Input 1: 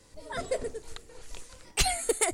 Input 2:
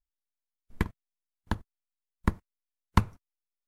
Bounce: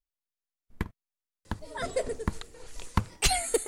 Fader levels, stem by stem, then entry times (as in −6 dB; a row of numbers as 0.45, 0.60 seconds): +1.0, −4.0 decibels; 1.45, 0.00 seconds